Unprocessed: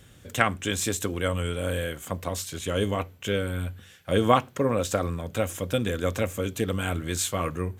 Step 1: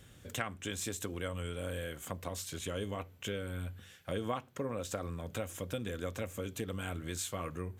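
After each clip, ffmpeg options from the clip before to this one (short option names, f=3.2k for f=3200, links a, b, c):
-af "acompressor=threshold=-33dB:ratio=2.5,volume=-4.5dB"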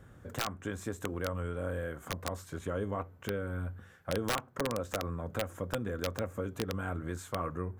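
-af "highshelf=f=2k:t=q:w=1.5:g=-12.5,aeval=exprs='(mod(18.8*val(0)+1,2)-1)/18.8':c=same,volume=3dB"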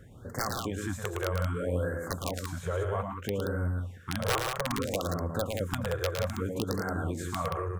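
-af "aecho=1:1:110.8|177.8:0.562|0.501,afftfilt=real='re*(1-between(b*sr/1024,220*pow(3100/220,0.5+0.5*sin(2*PI*0.62*pts/sr))/1.41,220*pow(3100/220,0.5+0.5*sin(2*PI*0.62*pts/sr))*1.41))':imag='im*(1-between(b*sr/1024,220*pow(3100/220,0.5+0.5*sin(2*PI*0.62*pts/sr))/1.41,220*pow(3100/220,0.5+0.5*sin(2*PI*0.62*pts/sr))*1.41))':win_size=1024:overlap=0.75,volume=3dB"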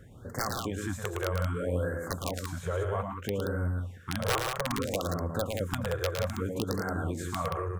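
-af anull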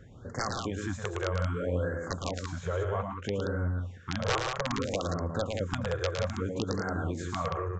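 -af "aresample=16000,aresample=44100"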